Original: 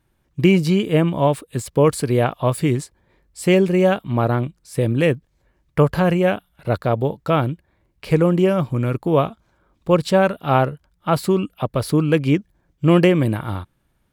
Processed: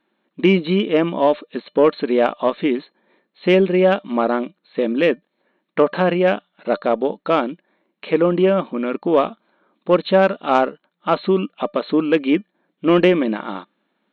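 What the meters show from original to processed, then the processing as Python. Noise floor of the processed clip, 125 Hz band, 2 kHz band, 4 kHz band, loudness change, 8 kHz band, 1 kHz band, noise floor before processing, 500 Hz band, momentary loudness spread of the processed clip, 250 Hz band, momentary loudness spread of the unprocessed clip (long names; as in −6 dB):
−73 dBFS, −9.5 dB, +1.5 dB, +1.5 dB, +0.5 dB, below −20 dB, +1.5 dB, −67 dBFS, +2.0 dB, 10 LU, 0.0 dB, 10 LU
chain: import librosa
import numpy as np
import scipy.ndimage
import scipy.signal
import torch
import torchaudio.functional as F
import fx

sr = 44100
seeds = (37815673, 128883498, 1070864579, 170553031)

y = fx.brickwall_bandpass(x, sr, low_hz=180.0, high_hz=4300.0)
y = fx.cheby_harmonics(y, sr, harmonics=(5,), levels_db=(-28,), full_scale_db=-2.5)
y = fx.comb_fb(y, sr, f0_hz=600.0, decay_s=0.16, harmonics='all', damping=0.0, mix_pct=40)
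y = y * librosa.db_to_amplitude(5.0)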